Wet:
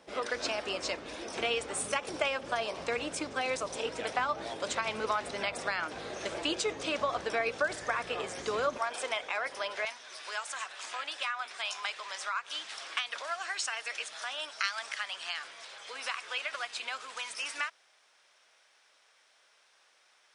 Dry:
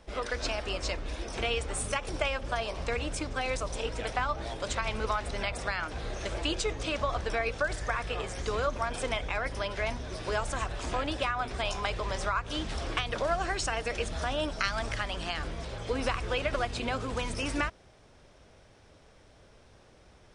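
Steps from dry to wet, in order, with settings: HPF 220 Hz 12 dB/oct, from 8.78 s 570 Hz, from 9.85 s 1300 Hz

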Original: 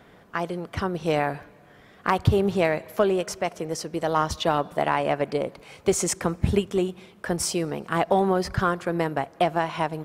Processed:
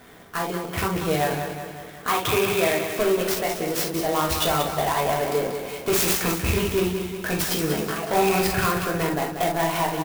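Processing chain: rattling part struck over -26 dBFS, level -17 dBFS; high shelf 2100 Hz +7 dB; 7.42–8.05 negative-ratio compressor -27 dBFS, ratio -0.5; soft clip -19.5 dBFS, distortion -8 dB; 2.07–2.86 speaker cabinet 150–4200 Hz, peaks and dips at 180 Hz -6 dB, 1300 Hz +3 dB, 2400 Hz +4 dB, 3500 Hz +6 dB; feedback echo 0.186 s, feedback 56%, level -8 dB; reverb, pre-delay 3 ms, DRR -1.5 dB; clock jitter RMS 0.039 ms

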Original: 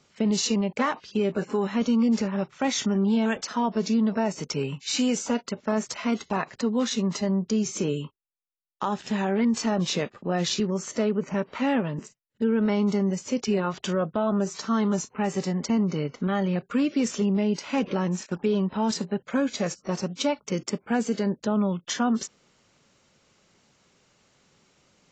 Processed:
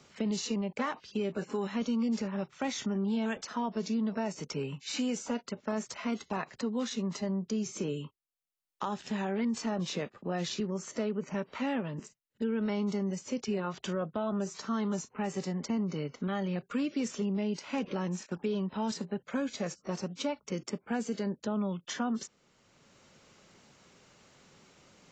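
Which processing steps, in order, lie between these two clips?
three-band squash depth 40%; gain -8 dB

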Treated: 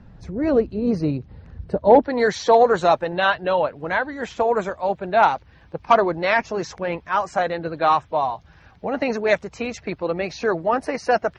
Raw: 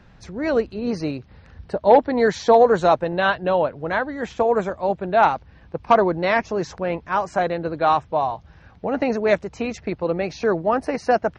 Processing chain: bin magnitudes rounded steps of 15 dB; tilt shelf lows +6 dB, about 690 Hz, from 2.03 s lows -3 dB

